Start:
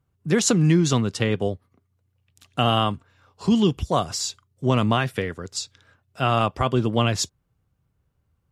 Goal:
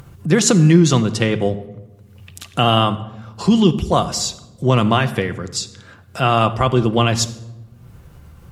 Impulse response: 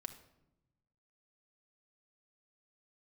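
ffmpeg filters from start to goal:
-filter_complex "[0:a]acompressor=mode=upward:threshold=0.0398:ratio=2.5,asplit=2[s0][s1];[1:a]atrim=start_sample=2205,asetrate=34839,aresample=44100[s2];[s1][s2]afir=irnorm=-1:irlink=0,volume=1.88[s3];[s0][s3]amix=inputs=2:normalize=0,volume=0.794"

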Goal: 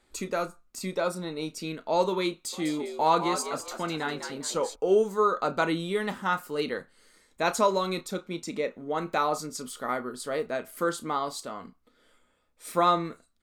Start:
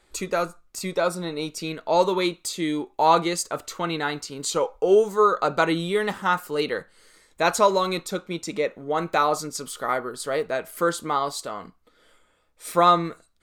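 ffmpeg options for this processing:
-filter_complex "[0:a]equalizer=f=240:t=o:w=0.41:g=8,asplit=2[s0][s1];[s1]adelay=32,volume=0.211[s2];[s0][s2]amix=inputs=2:normalize=0,asplit=3[s3][s4][s5];[s3]afade=t=out:st=2.52:d=0.02[s6];[s4]asplit=5[s7][s8][s9][s10][s11];[s8]adelay=202,afreqshift=83,volume=0.376[s12];[s9]adelay=404,afreqshift=166,volume=0.135[s13];[s10]adelay=606,afreqshift=249,volume=0.049[s14];[s11]adelay=808,afreqshift=332,volume=0.0176[s15];[s7][s12][s13][s14][s15]amix=inputs=5:normalize=0,afade=t=in:st=2.52:d=0.02,afade=t=out:st=4.74:d=0.02[s16];[s5]afade=t=in:st=4.74:d=0.02[s17];[s6][s16][s17]amix=inputs=3:normalize=0,volume=0.531"

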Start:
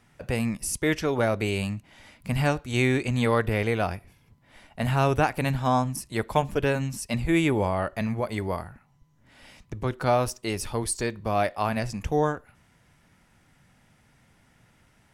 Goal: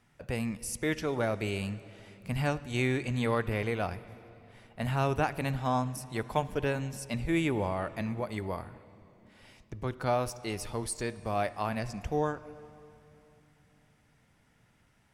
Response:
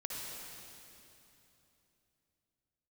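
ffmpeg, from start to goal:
-filter_complex "[0:a]asplit=2[s0][s1];[1:a]atrim=start_sample=2205,lowpass=7100[s2];[s1][s2]afir=irnorm=-1:irlink=0,volume=0.178[s3];[s0][s3]amix=inputs=2:normalize=0,volume=0.447"

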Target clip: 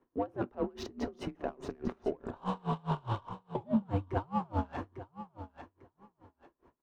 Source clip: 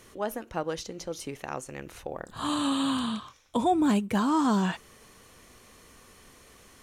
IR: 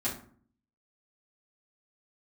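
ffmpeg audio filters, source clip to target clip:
-filter_complex "[0:a]agate=range=0.0224:threshold=0.00891:ratio=3:detection=peak,firequalizer=gain_entry='entry(160,0);entry(400,12);entry(1100,10);entry(2200,1)':delay=0.05:min_phase=1,alimiter=level_in=1.88:limit=0.0631:level=0:latency=1:release=13,volume=0.531,acontrast=38,afreqshift=-110,adynamicsmooth=sensitivity=3:basefreq=1700,aecho=1:1:849|1698:0.224|0.0403,asplit=2[s0][s1];[1:a]atrim=start_sample=2205[s2];[s1][s2]afir=irnorm=-1:irlink=0,volume=0.15[s3];[s0][s3]amix=inputs=2:normalize=0,aeval=exprs='val(0)*pow(10,-31*(0.5-0.5*cos(2*PI*4.8*n/s))/20)':c=same,volume=1.26"

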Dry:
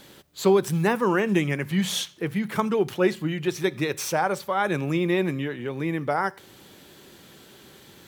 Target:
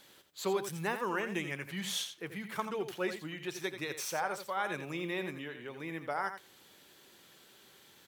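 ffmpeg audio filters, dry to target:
-filter_complex "[0:a]lowshelf=f=440:g=-11,asplit=2[s0][s1];[s1]aecho=0:1:85:0.335[s2];[s0][s2]amix=inputs=2:normalize=0,volume=0.398"

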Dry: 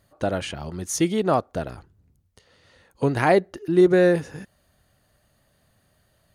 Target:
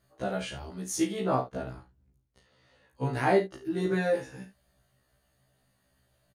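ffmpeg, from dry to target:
-filter_complex "[0:a]asettb=1/sr,asplit=3[s0][s1][s2];[s0]atrim=end=1.204[s3];[s1]atrim=start=1.2:end=3.06,asetpts=PTS-STARTPTS,afade=t=in:d=0.004:c=qsin,afade=t=out:st=1.856:d=0.004:c=qsin,highshelf=f=4800:g=-6.5[s4];[s2]atrim=start=3.056[s5];[s3][s4]acrossfade=d=0.004:c1=hsin:c2=qsin[s6];[s6][s5]acrossfade=d=0.004:c1=qsin:c2=hsin,aecho=1:1:38|70:0.376|0.211,afftfilt=real='re*1.73*eq(mod(b,3),0)':imag='im*1.73*eq(mod(b,3),0)':win_size=2048:overlap=0.75,volume=0.596"

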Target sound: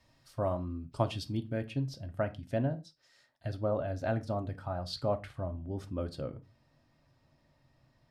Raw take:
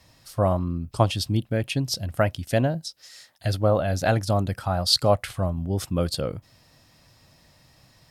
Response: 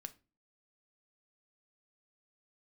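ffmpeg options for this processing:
-filter_complex "[0:a]asetnsamples=n=441:p=0,asendcmd='1.64 lowpass f 1300',lowpass=f=3900:p=1[s0];[1:a]atrim=start_sample=2205,afade=t=out:st=0.2:d=0.01,atrim=end_sample=9261[s1];[s0][s1]afir=irnorm=-1:irlink=0,volume=0.596"

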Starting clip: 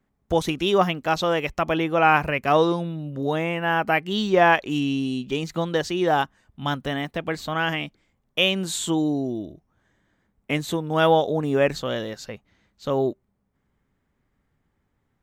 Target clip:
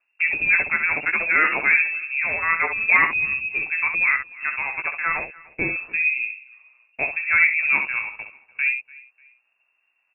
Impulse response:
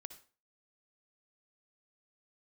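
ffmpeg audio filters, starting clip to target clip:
-filter_complex "[0:a]aeval=exprs='0.355*(abs(mod(val(0)/0.355+3,4)-2)-1)':c=same,asplit=2[s0][s1];[s1]aecho=0:1:441|882:0.075|0.0247[s2];[s0][s2]amix=inputs=2:normalize=0,atempo=1.5,asplit=2[s3][s4];[s4]aecho=0:1:17|66:0.447|0.422[s5];[s3][s5]amix=inputs=2:normalize=0,lowpass=f=2400:t=q:w=0.5098,lowpass=f=2400:t=q:w=0.6013,lowpass=f=2400:t=q:w=0.9,lowpass=f=2400:t=q:w=2.563,afreqshift=-2800"

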